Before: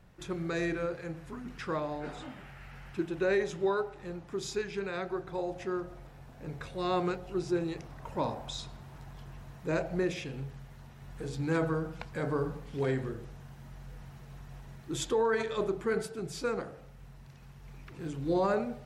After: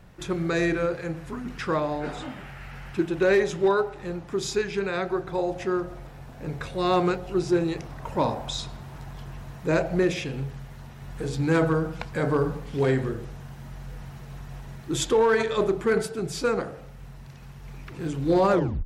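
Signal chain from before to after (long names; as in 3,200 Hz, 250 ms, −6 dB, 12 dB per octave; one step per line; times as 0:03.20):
turntable brake at the end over 0.34 s
hard clipping −22.5 dBFS, distortion −27 dB
level +8 dB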